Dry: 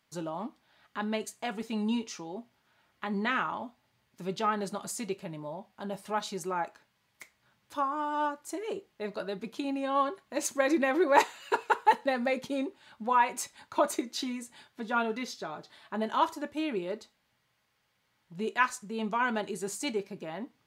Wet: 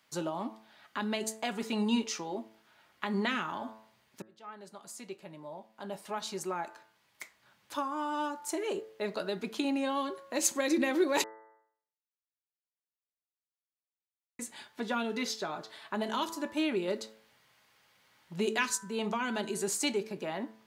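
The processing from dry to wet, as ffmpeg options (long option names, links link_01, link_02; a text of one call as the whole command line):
ffmpeg -i in.wav -filter_complex "[0:a]asplit=6[link_01][link_02][link_03][link_04][link_05][link_06];[link_01]atrim=end=4.22,asetpts=PTS-STARTPTS,afade=type=out:start_time=4.216:duration=0.004:curve=hsin[link_07];[link_02]atrim=start=4.22:end=11.24,asetpts=PTS-STARTPTS,afade=type=in:duration=3.55,afade=type=out:start_time=7.016:duration=0.004:curve=hsin[link_08];[link_03]atrim=start=11.24:end=14.39,asetpts=PTS-STARTPTS,volume=0[link_09];[link_04]atrim=start=14.39:end=16.882,asetpts=PTS-STARTPTS,afade=type=in:duration=0.004:curve=hsin[link_10];[link_05]atrim=start=16.878:end=18.772,asetpts=PTS-STARTPTS,volume=3.5dB[link_11];[link_06]atrim=start=18.768[link_12];[link_07][link_08][link_09][link_10]concat=n=4:v=0:a=1[link_13];[link_13][link_11]acrossfade=duration=0.004:curve1=hsin:curve2=hsin[link_14];[link_14][link_12]acrossfade=duration=0.004:curve1=hsin:curve2=hsin,lowshelf=frequency=180:gain=-10,bandreject=frequency=109.9:width_type=h:width=4,bandreject=frequency=219.8:width_type=h:width=4,bandreject=frequency=329.7:width_type=h:width=4,bandreject=frequency=439.6:width_type=h:width=4,bandreject=frequency=549.5:width_type=h:width=4,bandreject=frequency=659.4:width_type=h:width=4,bandreject=frequency=769.3:width_type=h:width=4,bandreject=frequency=879.2:width_type=h:width=4,bandreject=frequency=989.1:width_type=h:width=4,bandreject=frequency=1099:width_type=h:width=4,bandreject=frequency=1208.9:width_type=h:width=4,bandreject=frequency=1318.8:width_type=h:width=4,bandreject=frequency=1428.7:width_type=h:width=4,bandreject=frequency=1538.6:width_type=h:width=4,bandreject=frequency=1648.5:width_type=h:width=4,bandreject=frequency=1758.4:width_type=h:width=4,bandreject=frequency=1868.3:width_type=h:width=4,bandreject=frequency=1978.2:width_type=h:width=4,acrossover=split=340|3000[link_15][link_16][link_17];[link_16]acompressor=threshold=-39dB:ratio=6[link_18];[link_15][link_18][link_17]amix=inputs=3:normalize=0,volume=5.5dB" out.wav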